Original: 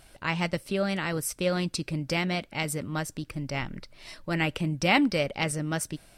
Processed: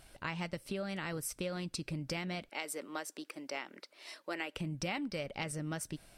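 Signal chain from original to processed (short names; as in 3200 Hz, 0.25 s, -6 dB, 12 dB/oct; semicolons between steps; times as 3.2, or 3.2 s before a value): 2.49–4.56 HPF 320 Hz 24 dB/oct; compressor 6:1, threshold -31 dBFS, peak gain reduction 13.5 dB; gain -4 dB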